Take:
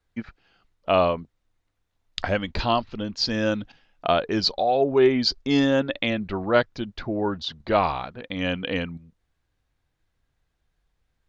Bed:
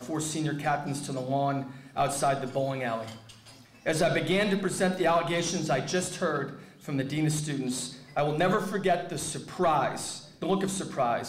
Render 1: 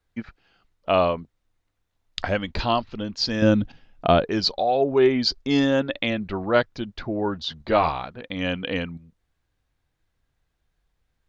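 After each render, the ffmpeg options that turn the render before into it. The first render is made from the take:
-filter_complex "[0:a]asettb=1/sr,asplit=3[s0][s1][s2];[s0]atrim=end=3.424[s3];[s1]atrim=start=3.42:end=4.25,asetpts=PTS-STARTPTS,afade=t=in:d=0.004:c=qsin,afade=t=out:st=0.826:d=0.004:c=qsin,lowshelf=f=400:g=11.5[s4];[s2]atrim=start=4.246[s5];[s3][s4]acrossfade=d=0.004:c1=hsin:c2=qsin[s6];[s6][s5]acrossfade=d=0.004:c1=qsin:c2=hsin,asettb=1/sr,asplit=3[s7][s8][s9];[s7]atrim=end=7.424[s10];[s8]atrim=start=7.42:end=7.89,asetpts=PTS-STARTPTS,afade=t=in:d=0.004:c=qsin,afade=t=out:st=0.466:d=0.004:c=qsin,asplit=2[s11][s12];[s12]adelay=13,volume=0.473[s13];[s11][s13]amix=inputs=2:normalize=0,atrim=end_sample=20727[s14];[s9]atrim=start=7.886[s15];[s10][s14]acrossfade=d=0.004:c1=hsin:c2=qsin[s16];[s16][s15]acrossfade=d=0.004:c1=qsin:c2=hsin"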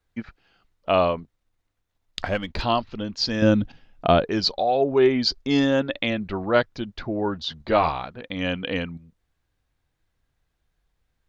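-filter_complex "[0:a]asettb=1/sr,asplit=3[s0][s1][s2];[s0]atrim=end=1.194[s3];[s1]atrim=start=1.19:end=2.62,asetpts=PTS-STARTPTS,afade=t=in:d=0.004:c=qsin,afade=t=out:st=1.426:d=0.004:c=qsin,aeval=exprs='if(lt(val(0),0),0.708*val(0),val(0))':c=same[s4];[s2]atrim=start=2.616[s5];[s3][s4]acrossfade=d=0.004:c1=hsin:c2=qsin[s6];[s6][s5]acrossfade=d=0.004:c1=qsin:c2=hsin"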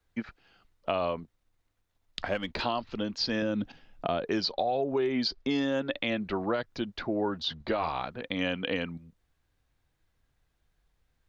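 -filter_complex "[0:a]alimiter=limit=0.188:level=0:latency=1:release=114,acrossover=split=190|5400[s0][s1][s2];[s0]acompressor=threshold=0.00501:ratio=4[s3];[s1]acompressor=threshold=0.0501:ratio=4[s4];[s2]acompressor=threshold=0.00158:ratio=4[s5];[s3][s4][s5]amix=inputs=3:normalize=0"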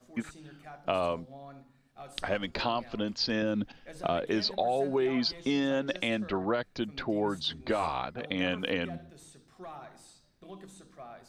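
-filter_complex "[1:a]volume=0.1[s0];[0:a][s0]amix=inputs=2:normalize=0"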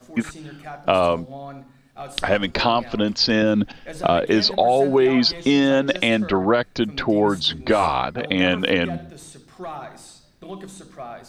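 -af "volume=3.76"

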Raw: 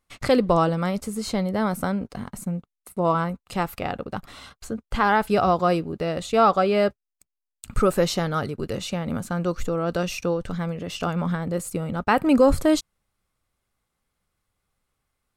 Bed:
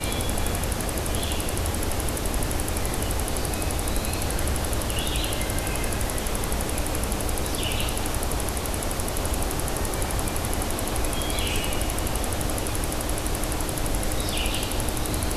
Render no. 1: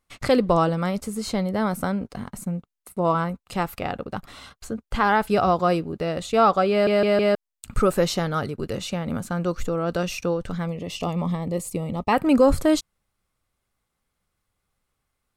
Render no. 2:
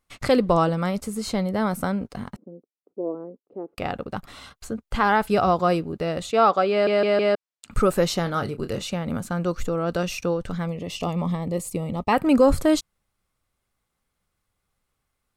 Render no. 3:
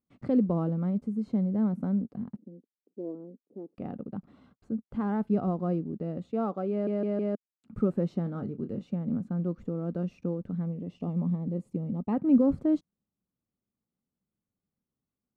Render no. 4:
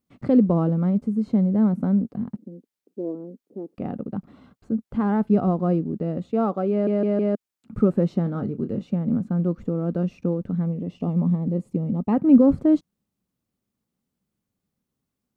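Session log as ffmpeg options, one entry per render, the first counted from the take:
-filter_complex "[0:a]asettb=1/sr,asplit=3[s0][s1][s2];[s0]atrim=end=10.674[s3];[s1]atrim=start=10.67:end=12.13,asetpts=PTS-STARTPTS,afade=t=in:d=0.004:c=qsin,afade=t=out:st=1.456:d=0.004:c=qsin,asuperstop=centerf=1500:order=4:qfactor=2.2[s4];[s2]atrim=start=12.126[s5];[s3][s4]acrossfade=d=0.004:c1=hsin:c2=qsin[s6];[s6][s5]acrossfade=d=0.004:c1=qsin:c2=hsin,asplit=5[s7][s8][s9][s10][s11];[s7]atrim=end=6.872[s12];[s8]atrim=start=6.708:end=6.872[s13];[s9]atrim=start=6.708:end=6.872[s14];[s10]atrim=start=6.708:end=6.872[s15];[s11]atrim=start=7.348[s16];[s12][s13]acrossfade=d=0.004:c1=hsin:c2=hsin[s17];[s17][s14]acrossfade=d=0.004:c1=hsin:c2=hsin[s18];[s18][s15]acrossfade=d=0.004:c1=hsin:c2=hsin[s19];[s19][s16]acrossfade=d=0.004:c1=hsin:c2=hsin"
-filter_complex "[0:a]asettb=1/sr,asplit=3[s0][s1][s2];[s0]atrim=end=2.364[s3];[s1]atrim=start=2.36:end=3.78,asetpts=PTS-STARTPTS,afade=t=in:d=0.004:c=qsin,afade=t=out:st=1.416:d=0.004:c=qsin,asuperpass=centerf=380:order=4:qfactor=1.8[s4];[s2]atrim=start=3.776[s5];[s3][s4]acrossfade=d=0.004:c1=hsin:c2=qsin[s6];[s6][s5]acrossfade=d=0.004:c1=qsin:c2=hsin,asettb=1/sr,asplit=3[s7][s8][s9];[s7]atrim=end=6.314[s10];[s8]atrim=start=6.31:end=7.71,asetpts=PTS-STARTPTS,afade=t=in:d=0.004:c=qsin,afade=t=out:st=1.396:d=0.004:c=qsin,highpass=240,lowpass=6500[s11];[s9]atrim=start=7.706[s12];[s10][s11]acrossfade=d=0.004:c1=hsin:c2=qsin[s13];[s13][s12]acrossfade=d=0.004:c1=qsin:c2=hsin,asettb=1/sr,asplit=3[s14][s15][s16];[s14]atrim=end=8.234[s17];[s15]atrim=start=8.23:end=8.82,asetpts=PTS-STARTPTS,afade=t=in:d=0.004:c=qsin,afade=t=out:st=0.586:d=0.004:c=qsin,asplit=2[s18][s19];[s19]adelay=29,volume=0.316[s20];[s18][s20]amix=inputs=2:normalize=0,atrim=end_sample=26019[s21];[s16]atrim=start=8.816[s22];[s17][s21]acrossfade=d=0.004:c1=hsin:c2=qsin[s23];[s23][s22]acrossfade=d=0.004:c1=qsin:c2=hsin"
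-af "acrusher=bits=6:mode=log:mix=0:aa=0.000001,bandpass=f=220:t=q:w=2:csg=0"
-af "volume=2.37"

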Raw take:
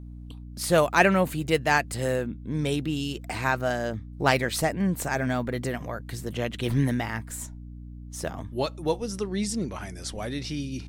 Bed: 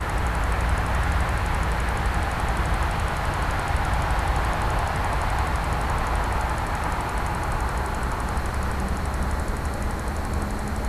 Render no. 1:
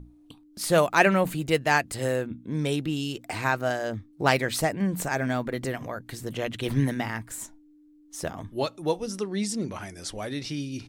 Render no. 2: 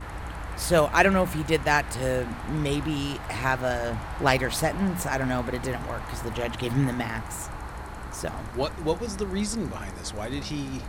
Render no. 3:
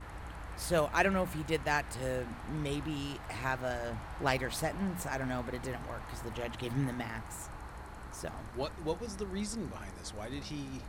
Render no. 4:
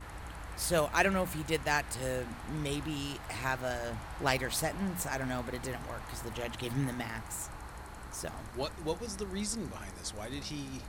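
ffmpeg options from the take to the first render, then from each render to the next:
-af "bandreject=f=60:t=h:w=6,bandreject=f=120:t=h:w=6,bandreject=f=180:t=h:w=6,bandreject=f=240:t=h:w=6"
-filter_complex "[1:a]volume=0.266[s0];[0:a][s0]amix=inputs=2:normalize=0"
-af "volume=0.355"
-af "highshelf=f=3600:g=7"

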